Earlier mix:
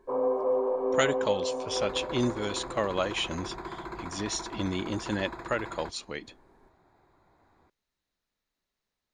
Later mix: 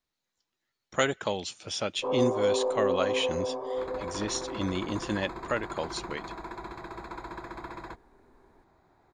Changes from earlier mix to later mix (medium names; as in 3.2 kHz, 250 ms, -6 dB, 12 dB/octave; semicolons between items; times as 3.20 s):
first sound: entry +1.95 s; second sound: entry +2.05 s